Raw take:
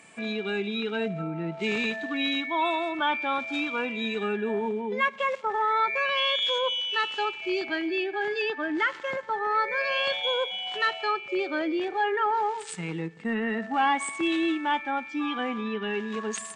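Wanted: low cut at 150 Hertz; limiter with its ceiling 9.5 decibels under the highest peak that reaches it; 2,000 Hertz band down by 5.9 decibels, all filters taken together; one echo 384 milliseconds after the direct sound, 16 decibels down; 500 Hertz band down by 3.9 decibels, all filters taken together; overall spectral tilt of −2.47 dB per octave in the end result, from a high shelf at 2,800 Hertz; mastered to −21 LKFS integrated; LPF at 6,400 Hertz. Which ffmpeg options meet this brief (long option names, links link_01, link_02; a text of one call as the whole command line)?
ffmpeg -i in.wav -af "highpass=150,lowpass=6400,equalizer=frequency=500:width_type=o:gain=-4.5,equalizer=frequency=2000:width_type=o:gain=-4.5,highshelf=frequency=2800:gain=-6.5,alimiter=level_in=3.5dB:limit=-24dB:level=0:latency=1,volume=-3.5dB,aecho=1:1:384:0.158,volume=14dB" out.wav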